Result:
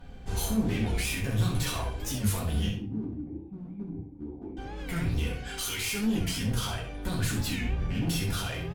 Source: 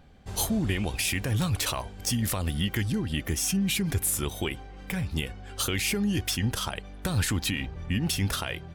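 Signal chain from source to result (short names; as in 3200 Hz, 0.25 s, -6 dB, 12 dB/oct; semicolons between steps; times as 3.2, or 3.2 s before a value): 5.34–6.04 tilt shelf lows -7.5 dB, about 1100 Hz; in parallel at -2 dB: compressor, threshold -35 dBFS, peak gain reduction 15.5 dB; on the sum: limiter -20.5 dBFS, peak gain reduction 11.5 dB; 2.69–4.57 vocal tract filter u; one-sided clip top -32.5 dBFS, bottom -23.5 dBFS; on a send: feedback echo 65 ms, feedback 15%, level -8.5 dB; on the sum: shoebox room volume 30 m³, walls mixed, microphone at 1 m; record warp 45 rpm, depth 160 cents; gain -6 dB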